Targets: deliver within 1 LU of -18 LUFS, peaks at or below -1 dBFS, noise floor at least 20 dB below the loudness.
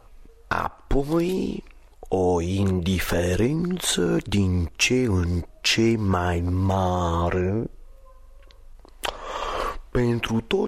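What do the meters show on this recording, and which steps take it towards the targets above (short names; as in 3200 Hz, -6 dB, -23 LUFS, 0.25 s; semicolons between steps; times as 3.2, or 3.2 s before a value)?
loudness -24.0 LUFS; peak -7.5 dBFS; loudness target -18.0 LUFS
-> gain +6 dB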